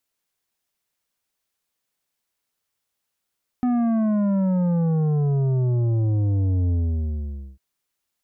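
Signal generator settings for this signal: sub drop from 250 Hz, over 3.95 s, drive 9 dB, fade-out 0.87 s, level -19 dB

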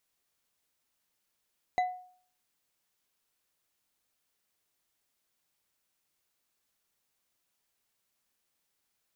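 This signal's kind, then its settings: glass hit bar, lowest mode 731 Hz, decay 0.53 s, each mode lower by 10 dB, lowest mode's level -22 dB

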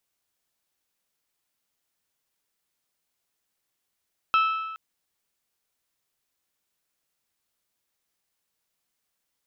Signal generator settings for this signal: metal hit bell, length 0.42 s, lowest mode 1.31 kHz, decay 1.29 s, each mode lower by 7.5 dB, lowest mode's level -16.5 dB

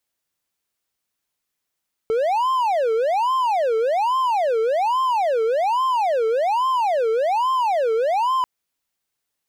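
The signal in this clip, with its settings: siren wail 442–1050 Hz 1.2 per s triangle -15 dBFS 6.34 s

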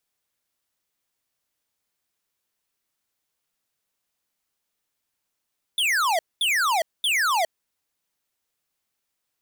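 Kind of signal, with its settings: burst of laser zaps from 3.6 kHz, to 620 Hz, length 0.41 s square, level -21.5 dB, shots 3, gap 0.22 s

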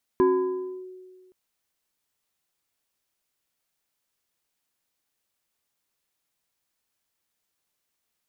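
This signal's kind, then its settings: FM tone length 1.12 s, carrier 370 Hz, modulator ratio 1.73, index 0.69, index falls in 0.66 s linear, decay 1.69 s, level -14.5 dB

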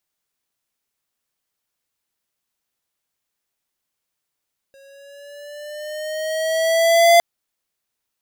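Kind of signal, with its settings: gliding synth tone square, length 2.46 s, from 545 Hz, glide +4 st, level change +37.5 dB, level -10 dB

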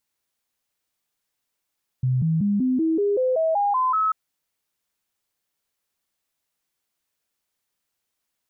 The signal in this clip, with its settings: stepped sine 128 Hz up, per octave 3, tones 11, 0.19 s, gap 0.00 s -18 dBFS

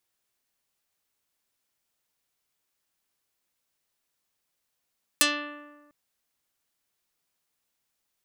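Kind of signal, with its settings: plucked string D4, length 0.70 s, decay 1.38 s, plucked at 0.38, dark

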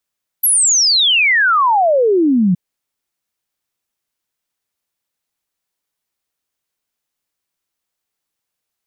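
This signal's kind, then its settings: log sweep 12 kHz -> 170 Hz 2.12 s -9.5 dBFS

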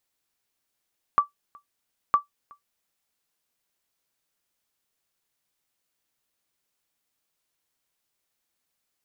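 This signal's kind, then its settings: sonar ping 1.16 kHz, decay 0.13 s, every 0.96 s, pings 2, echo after 0.37 s, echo -29 dB -10 dBFS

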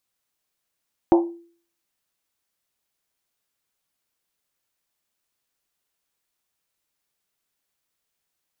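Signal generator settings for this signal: Risset drum, pitch 340 Hz, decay 0.48 s, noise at 790 Hz, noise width 370 Hz, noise 20%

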